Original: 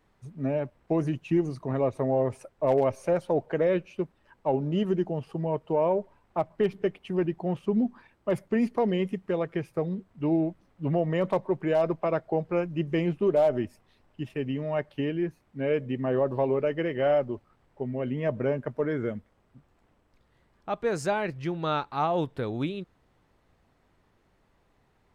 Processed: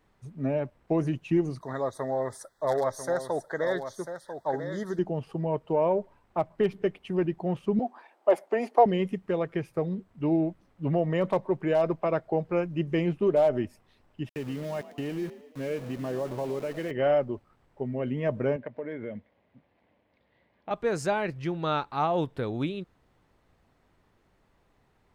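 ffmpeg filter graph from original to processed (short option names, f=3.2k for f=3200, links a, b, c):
-filter_complex "[0:a]asettb=1/sr,asplit=3[a][b][c];[a]atrim=end=1.614[d];[b]atrim=start=1.61:end=4.99,asetpts=PTS-STARTPTS,afade=t=in:d=0.004:c=qsin,afade=t=out:st=3.376:d=0.004:c=qsin,asuperstop=centerf=2600:order=12:qfactor=1.9,tiltshelf=f=890:g=-9.5,aecho=1:1:994:0.355,atrim=end_sample=149058[e];[c]atrim=start=4.986[f];[d][e]acrossfade=d=0.004:c1=hsin:c2=qsin[g];[g][f]acrossfade=d=0.004:c1=qsin:c2=hsin,asettb=1/sr,asplit=3[h][i][j];[h]atrim=end=7.794[k];[i]atrim=start=7.79:end=8.86,asetpts=PTS-STARTPTS,afade=t=in:d=0.004:c=qsin,afade=t=out:st=1.066:d=0.004:c=qsin,highpass=f=320:w=0.5412,highpass=f=320:w=1.3066,equalizer=f=740:w=2:g=13.5[l];[j]atrim=start=8.856[m];[k][l]acrossfade=d=0.004:c1=hsin:c2=qsin[n];[n][m]acrossfade=d=0.004:c1=qsin:c2=hsin,asettb=1/sr,asplit=3[o][p][q];[o]atrim=end=14.294[r];[p]atrim=start=14.29:end=16.91,asetpts=PTS-STARTPTS,afade=t=in:d=0.004:c=qsin,afade=t=out:st=2.616:d=0.004:c=qsin,acompressor=threshold=-32dB:ratio=2:attack=3.2:release=140:knee=1:detection=peak,aeval=exprs='val(0)*gte(abs(val(0)),0.00794)':c=same,asplit=7[s][t][u][v][w][x][y];[t]adelay=112,afreqshift=43,volume=-16dB[z];[u]adelay=224,afreqshift=86,volume=-20.7dB[aa];[v]adelay=336,afreqshift=129,volume=-25.5dB[ab];[w]adelay=448,afreqshift=172,volume=-30.2dB[ac];[x]adelay=560,afreqshift=215,volume=-34.9dB[ad];[y]adelay=672,afreqshift=258,volume=-39.7dB[ae];[s][z][aa][ab][ac][ad][ae]amix=inputs=7:normalize=0,atrim=end_sample=115542[af];[q]atrim=start=16.906[ag];[r][af]acrossfade=d=0.004:c1=hsin:c2=qsin[ah];[ah][ag]acrossfade=d=0.004:c1=qsin:c2=hsin,asettb=1/sr,asplit=3[ai][aj][ak];[ai]atrim=end=18.564[al];[aj]atrim=start=18.56:end=20.71,asetpts=PTS-STARTPTS,afade=t=in:d=0.004:c=qsin,afade=t=out:st=2.146:d=0.004:c=qsin,acompressor=threshold=-32dB:ratio=4:attack=3.2:release=140:knee=1:detection=peak,highpass=110,equalizer=f=140:t=q:w=4:g=-7,equalizer=f=380:t=q:w=4:g=-4,equalizer=f=570:t=q:w=4:g=5,equalizer=f=1.3k:t=q:w=4:g=-9,equalizer=f=2.1k:t=q:w=4:g=5,lowpass=f=4.1k:w=0.5412,lowpass=f=4.1k:w=1.3066[am];[ak]atrim=start=20.706[an];[al][am]acrossfade=d=0.004:c1=hsin:c2=qsin[ao];[ao][an]acrossfade=d=0.004:c1=qsin:c2=hsin"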